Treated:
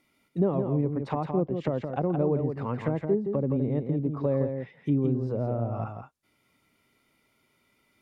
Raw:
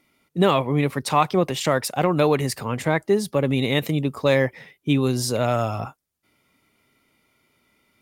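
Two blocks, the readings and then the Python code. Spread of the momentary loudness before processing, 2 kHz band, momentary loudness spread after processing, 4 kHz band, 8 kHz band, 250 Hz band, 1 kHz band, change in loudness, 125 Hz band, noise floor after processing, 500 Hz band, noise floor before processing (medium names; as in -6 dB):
7 LU, -20.0 dB, 6 LU, under -25 dB, under -35 dB, -4.0 dB, -12.0 dB, -6.5 dB, -3.5 dB, -70 dBFS, -6.5 dB, -71 dBFS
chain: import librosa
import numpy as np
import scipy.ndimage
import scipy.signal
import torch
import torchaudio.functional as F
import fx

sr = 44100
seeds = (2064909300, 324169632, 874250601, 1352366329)

y = fx.env_lowpass_down(x, sr, base_hz=480.0, full_db=-19.0)
y = y + 10.0 ** (-6.5 / 20.0) * np.pad(y, (int(168 * sr / 1000.0), 0))[:len(y)]
y = y * librosa.db_to_amplitude(-4.5)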